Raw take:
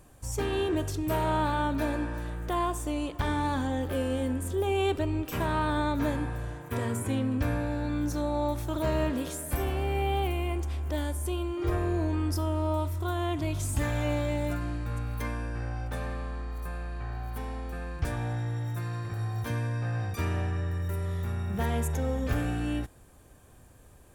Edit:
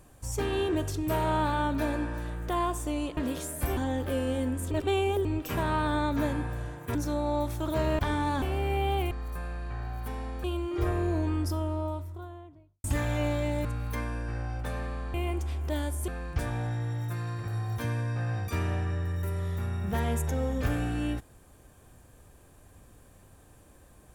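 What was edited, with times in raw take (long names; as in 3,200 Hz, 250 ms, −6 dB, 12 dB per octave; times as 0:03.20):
0:03.17–0:03.60: swap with 0:09.07–0:09.67
0:04.54–0:05.08: reverse
0:06.78–0:08.03: remove
0:10.36–0:11.30: swap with 0:16.41–0:17.74
0:12.04–0:13.70: fade out and dull
0:14.51–0:14.92: remove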